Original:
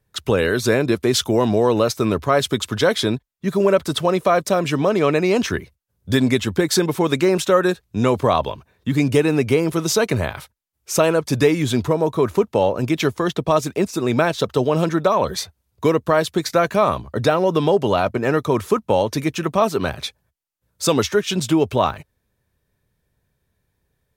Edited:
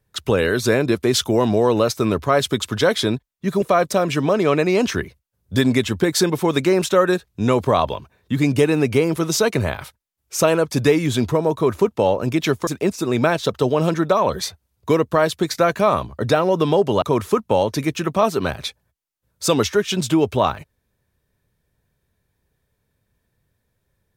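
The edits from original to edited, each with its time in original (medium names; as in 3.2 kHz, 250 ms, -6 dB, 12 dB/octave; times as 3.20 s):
3.62–4.18 s: delete
13.23–13.62 s: delete
17.97–18.41 s: delete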